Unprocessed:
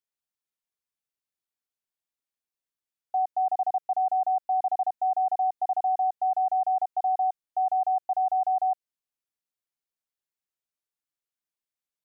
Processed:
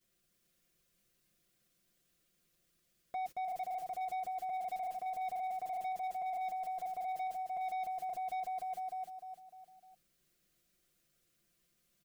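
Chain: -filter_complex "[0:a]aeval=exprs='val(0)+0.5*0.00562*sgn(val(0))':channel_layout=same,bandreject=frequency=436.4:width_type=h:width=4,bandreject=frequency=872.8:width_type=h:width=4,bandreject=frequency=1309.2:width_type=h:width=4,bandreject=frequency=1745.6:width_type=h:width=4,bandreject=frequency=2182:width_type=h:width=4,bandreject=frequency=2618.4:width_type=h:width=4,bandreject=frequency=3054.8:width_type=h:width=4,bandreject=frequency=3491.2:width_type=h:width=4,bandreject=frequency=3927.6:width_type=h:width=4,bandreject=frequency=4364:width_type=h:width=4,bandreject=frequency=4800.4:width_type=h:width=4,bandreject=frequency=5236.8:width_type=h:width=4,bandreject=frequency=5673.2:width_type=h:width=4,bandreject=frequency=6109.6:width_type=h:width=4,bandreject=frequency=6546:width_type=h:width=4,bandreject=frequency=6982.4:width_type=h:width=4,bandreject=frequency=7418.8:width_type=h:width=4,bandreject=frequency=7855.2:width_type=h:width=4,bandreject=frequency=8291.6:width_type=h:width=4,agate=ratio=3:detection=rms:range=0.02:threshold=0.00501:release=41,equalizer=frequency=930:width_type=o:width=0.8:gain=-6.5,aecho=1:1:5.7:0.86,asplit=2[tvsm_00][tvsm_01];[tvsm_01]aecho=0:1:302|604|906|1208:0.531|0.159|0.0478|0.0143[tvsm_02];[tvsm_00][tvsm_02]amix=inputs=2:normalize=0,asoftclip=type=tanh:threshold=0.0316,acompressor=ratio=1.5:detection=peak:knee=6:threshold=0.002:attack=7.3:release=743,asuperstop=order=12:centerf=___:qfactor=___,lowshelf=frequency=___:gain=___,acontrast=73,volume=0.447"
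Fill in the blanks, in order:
880, 5.5, 450, 11.5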